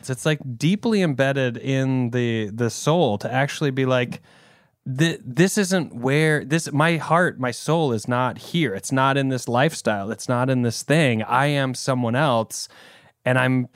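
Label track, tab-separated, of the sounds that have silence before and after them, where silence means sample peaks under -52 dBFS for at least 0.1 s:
4.860000	13.110000	sound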